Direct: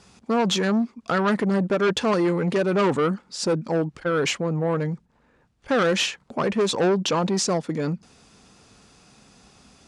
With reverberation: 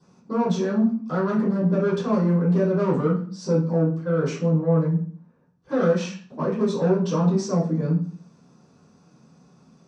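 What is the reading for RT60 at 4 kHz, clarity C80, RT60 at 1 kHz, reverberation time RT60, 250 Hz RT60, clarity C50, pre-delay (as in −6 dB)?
0.40 s, 11.5 dB, 0.45 s, 0.45 s, 0.70 s, 6.5 dB, 3 ms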